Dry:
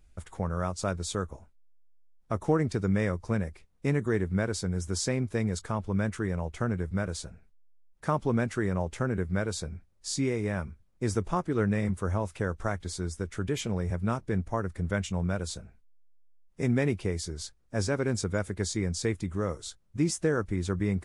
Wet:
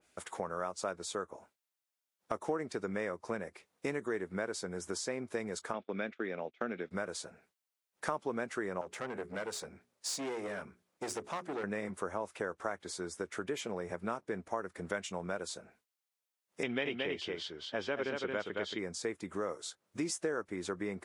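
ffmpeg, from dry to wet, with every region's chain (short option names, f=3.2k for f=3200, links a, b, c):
-filter_complex "[0:a]asettb=1/sr,asplit=3[a][b][c];[a]atrim=end=5.734[d];[b]atrim=start=5.73:end=6.91,asetpts=PTS-STARTPTS,afade=t=in:d=0.004:c=qsin,afade=t=out:st=1.176:d=0.004:c=qsin,agate=range=-26dB:threshold=-37dB:ratio=16:release=100:detection=peak,highpass=180,equalizer=f=240:t=q:w=4:g=5,equalizer=f=990:t=q:w=4:g=-9,equalizer=f=2.4k:t=q:w=4:g=8,equalizer=f=3.5k:t=q:w=4:g=10,lowpass=f=4.8k:w=0.5412,lowpass=f=4.8k:w=1.3066[e];[c]atrim=start=6.906[f];[d][e]acrossfade=d=0.004:c1=hsin:c2=qsin[g];[g][f]acrossfade=d=0.004:c1=qsin:c2=hsin,asettb=1/sr,asplit=3[h][i][j];[h]atrim=end=8.814[k];[i]atrim=start=8.81:end=11.64,asetpts=PTS-STARTPTS,afade=t=in:d=0.004:c=qsin,afade=t=out:st=2.826:d=0.004:c=qsin,aeval=exprs='(tanh(35.5*val(0)+0.35)-tanh(0.35))/35.5':c=same,bandreject=f=60:t=h:w=6,bandreject=f=120:t=h:w=6,bandreject=f=180:t=h:w=6,bandreject=f=240:t=h:w=6,bandreject=f=300:t=h:w=6,bandreject=f=360:t=h:w=6,bandreject=f=420:t=h:w=6[l];[j]atrim=start=11.636[m];[k][l]acrossfade=d=0.004:c1=hsin:c2=qsin[n];[n][m]acrossfade=d=0.004:c1=qsin:c2=hsin,asettb=1/sr,asplit=3[o][p][q];[o]atrim=end=16.634[r];[p]atrim=start=16.63:end=18.79,asetpts=PTS-STARTPTS,afade=t=in:d=0.004:c=qsin,afade=t=out:st=2.156:d=0.004:c=qsin,lowpass=f=3.1k:t=q:w=13,aecho=1:1:225:0.596,atrim=end_sample=95256[s];[q]atrim=start=18.786[t];[r][s]acrossfade=d=0.004:c1=hsin:c2=qsin[u];[u][t]acrossfade=d=0.004:c1=qsin:c2=hsin,highpass=380,acompressor=threshold=-42dB:ratio=2.5,adynamicequalizer=threshold=0.00126:dfrequency=2400:dqfactor=0.7:tfrequency=2400:tqfactor=0.7:attack=5:release=100:ratio=0.375:range=3:mode=cutabove:tftype=highshelf,volume=5.5dB"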